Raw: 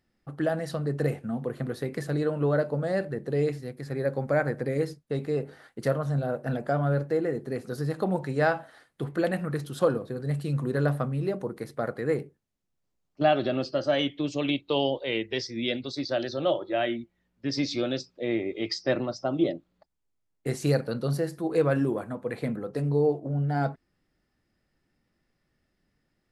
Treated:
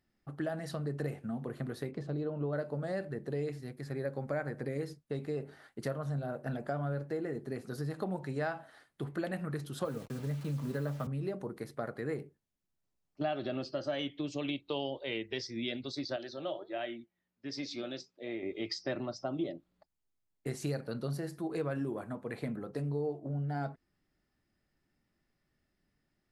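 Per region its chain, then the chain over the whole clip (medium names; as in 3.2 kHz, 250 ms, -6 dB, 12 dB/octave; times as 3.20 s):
1.91–2.53 s: low-pass 3.3 kHz + peaking EQ 1.8 kHz -11 dB 1 oct
9.85–11.07 s: send-on-delta sampling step -40.5 dBFS + comb of notches 360 Hz + three bands compressed up and down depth 40%
16.16–18.43 s: high-pass 210 Hz 6 dB/octave + flange 1.4 Hz, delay 1.2 ms, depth 5.4 ms, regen +82%
whole clip: band-stop 500 Hz, Q 12; compression 2.5:1, threshold -29 dBFS; trim -4.5 dB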